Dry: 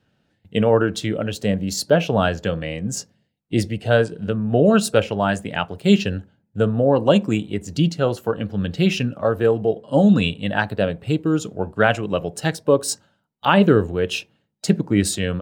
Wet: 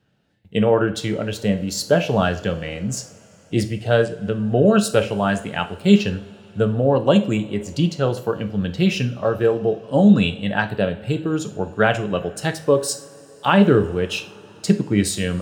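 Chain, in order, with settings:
coupled-rooms reverb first 0.42 s, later 4.5 s, from −22 dB, DRR 7.5 dB
level −1 dB

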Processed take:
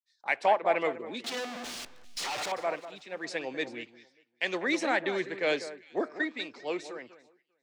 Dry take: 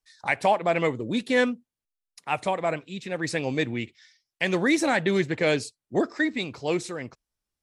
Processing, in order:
0:01.24–0:02.52: sign of each sample alone
low-shelf EQ 350 Hz −3 dB
in parallel at −1.5 dB: downward compressor, threshold −33 dBFS, peak gain reduction 15 dB
on the sum: three-way crossover with the lows and the highs turned down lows −21 dB, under 260 Hz, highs −18 dB, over 6,700 Hz
on a send: delay that swaps between a low-pass and a high-pass 198 ms, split 1,800 Hz, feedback 53%, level −9.5 dB
on the sum: multiband upward and downward expander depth 70%
level −6.5 dB

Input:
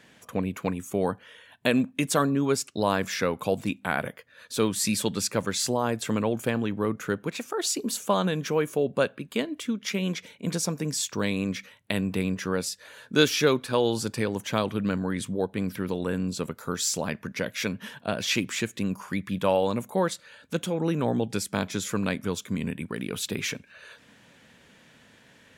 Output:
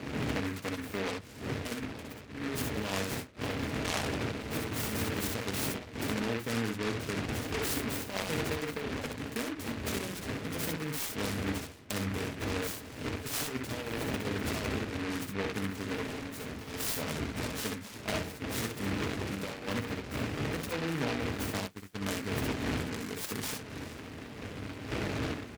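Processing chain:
wind on the microphone 400 Hz −26 dBFS
high-pass filter 63 Hz 24 dB per octave
0:21.60–0:22.01: noise gate −25 dBFS, range −25 dB
compressor whose output falls as the input rises −25 dBFS, ratio −0.5
0:16.01–0:16.74: gain into a clipping stage and back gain 28 dB
notch comb filter 180 Hz
ambience of single reflections 61 ms −4.5 dB, 72 ms −9.5 dB
short delay modulated by noise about 1,600 Hz, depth 0.21 ms
level −8.5 dB

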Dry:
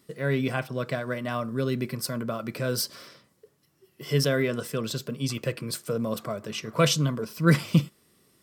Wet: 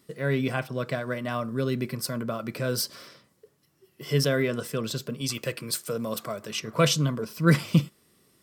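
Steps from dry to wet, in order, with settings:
0:05.21–0:06.60: spectral tilt +1.5 dB per octave

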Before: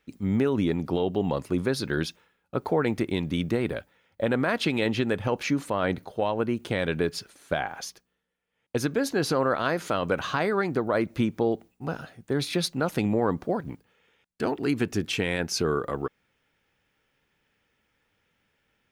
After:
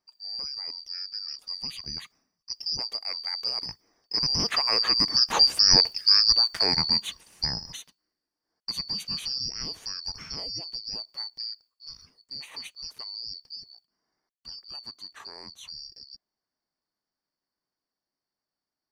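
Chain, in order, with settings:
band-splitting scrambler in four parts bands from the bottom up 2341
source passing by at 0:05.85, 7 m/s, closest 3.8 metres
level +8.5 dB

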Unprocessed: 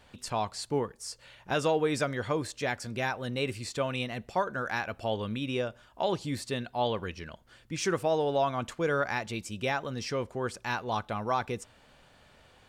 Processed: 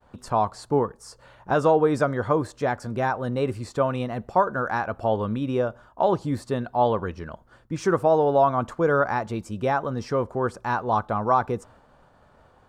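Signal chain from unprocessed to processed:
downward expander −54 dBFS
high shelf with overshoot 1,700 Hz −11 dB, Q 1.5
level +7 dB

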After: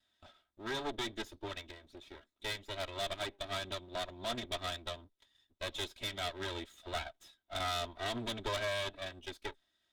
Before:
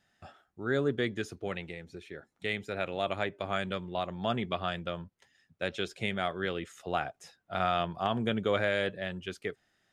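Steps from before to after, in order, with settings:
lower of the sound and its delayed copy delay 3.1 ms
parametric band 3,600 Hz +13.5 dB 0.33 octaves
tube saturation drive 32 dB, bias 0.5
expander for the loud parts 1.5 to 1, over −48 dBFS
level +1 dB

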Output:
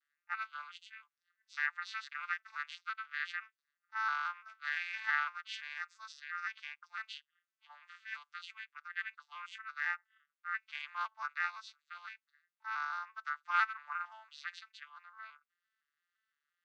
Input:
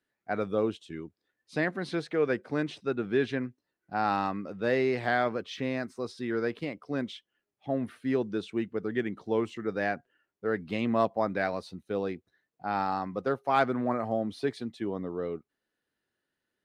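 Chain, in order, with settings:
vocoder with an arpeggio as carrier minor triad, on D3, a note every 170 ms
Butterworth high-pass 1,200 Hz 48 dB per octave
level +8 dB

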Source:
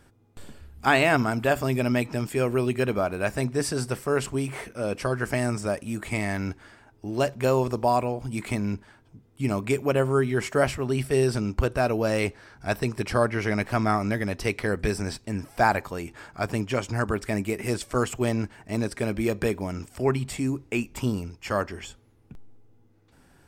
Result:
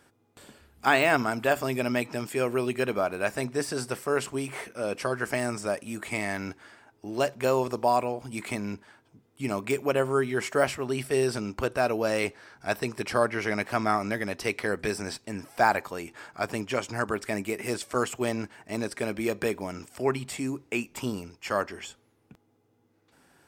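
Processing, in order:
de-essing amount 60%
high-pass filter 330 Hz 6 dB per octave

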